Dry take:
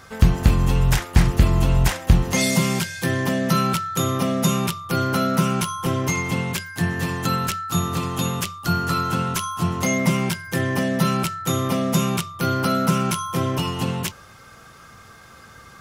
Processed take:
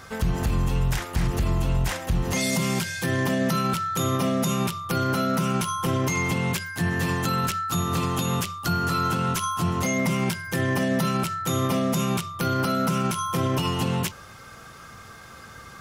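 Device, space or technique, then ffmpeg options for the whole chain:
stacked limiters: -af "alimiter=limit=0.299:level=0:latency=1:release=205,alimiter=limit=0.141:level=0:latency=1:release=48,volume=1.19"

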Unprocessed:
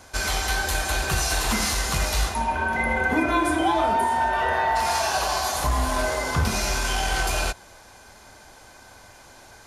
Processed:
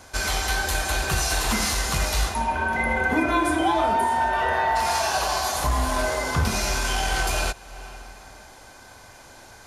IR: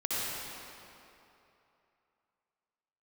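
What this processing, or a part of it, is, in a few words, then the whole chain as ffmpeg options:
ducked reverb: -filter_complex "[0:a]asplit=3[s0][s1][s2];[1:a]atrim=start_sample=2205[s3];[s1][s3]afir=irnorm=-1:irlink=0[s4];[s2]apad=whole_len=426137[s5];[s4][s5]sidechaincompress=threshold=0.01:ratio=8:attack=6.2:release=263,volume=0.15[s6];[s0][s6]amix=inputs=2:normalize=0"

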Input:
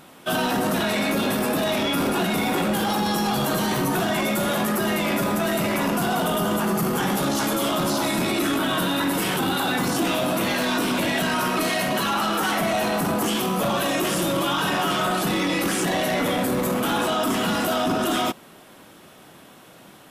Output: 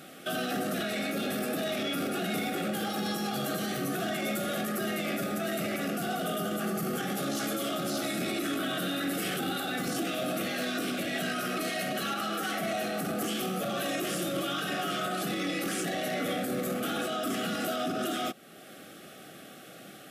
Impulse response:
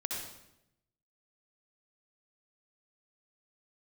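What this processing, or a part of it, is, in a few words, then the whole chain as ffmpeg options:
PA system with an anti-feedback notch: -af "highpass=130,asuperstop=centerf=960:order=12:qfactor=3.1,alimiter=limit=0.0708:level=0:latency=1:release=404"

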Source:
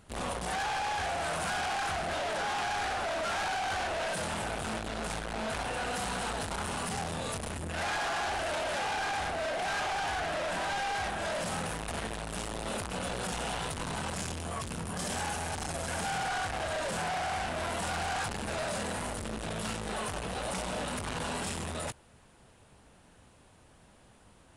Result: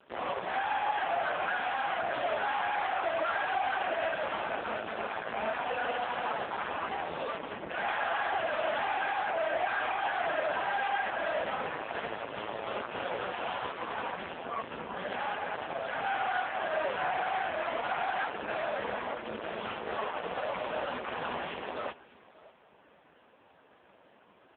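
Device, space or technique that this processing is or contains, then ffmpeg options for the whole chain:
satellite phone: -af "highpass=320,lowpass=3100,aecho=1:1:598:0.0891,volume=2.11" -ar 8000 -c:a libopencore_amrnb -b:a 5150

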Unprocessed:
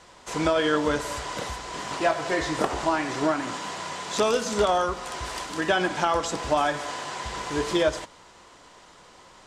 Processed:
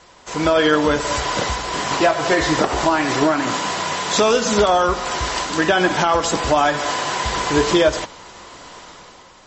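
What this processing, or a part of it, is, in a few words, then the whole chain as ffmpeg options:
low-bitrate web radio: -af "dynaudnorm=f=110:g=11:m=2.82,alimiter=limit=0.376:level=0:latency=1:release=178,volume=1.5" -ar 32000 -c:a libmp3lame -b:a 32k

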